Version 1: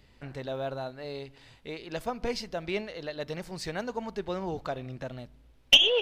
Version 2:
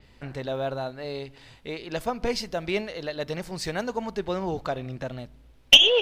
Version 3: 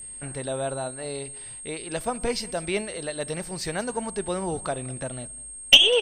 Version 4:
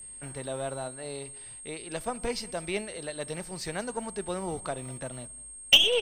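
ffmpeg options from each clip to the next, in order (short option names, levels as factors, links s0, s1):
-af "adynamicequalizer=threshold=0.00708:dfrequency=6100:dqfactor=0.7:tfrequency=6100:tqfactor=0.7:attack=5:release=100:ratio=0.375:range=2.5:mode=boostabove:tftype=highshelf,volume=1.68"
-af "aeval=exprs='val(0)+0.0141*sin(2*PI*8500*n/s)':c=same,aecho=1:1:197:0.0841"
-filter_complex "[0:a]acrossover=split=160[s0][s1];[s0]acrusher=samples=41:mix=1:aa=0.000001[s2];[s1]aeval=exprs='0.944*(cos(1*acos(clip(val(0)/0.944,-1,1)))-cos(1*PI/2))+0.0422*(cos(8*acos(clip(val(0)/0.944,-1,1)))-cos(8*PI/2))':c=same[s3];[s2][s3]amix=inputs=2:normalize=0,volume=0.562"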